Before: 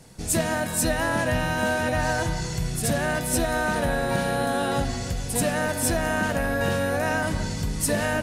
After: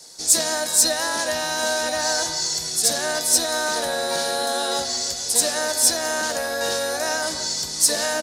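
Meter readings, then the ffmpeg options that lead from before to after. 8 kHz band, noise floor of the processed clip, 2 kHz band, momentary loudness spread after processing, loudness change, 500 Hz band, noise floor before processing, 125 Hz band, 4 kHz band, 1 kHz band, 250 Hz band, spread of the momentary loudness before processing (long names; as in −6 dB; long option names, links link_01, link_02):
+10.5 dB, −30 dBFS, 0.0 dB, 6 LU, +4.5 dB, +0.5 dB, −31 dBFS, −18.0 dB, +12.0 dB, +0.5 dB, −8.0 dB, 4 LU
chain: -filter_complex "[0:a]acrossover=split=330 5700:gain=0.0794 1 0.112[link_01][link_02][link_03];[link_01][link_02][link_03]amix=inputs=3:normalize=0,acrossover=split=770|1300[link_04][link_05][link_06];[link_04]asplit=2[link_07][link_08];[link_08]adelay=13,volume=-4dB[link_09];[link_07][link_09]amix=inputs=2:normalize=0[link_10];[link_06]aexciter=amount=5.3:drive=9.5:freq=4000[link_11];[link_10][link_05][link_11]amix=inputs=3:normalize=0"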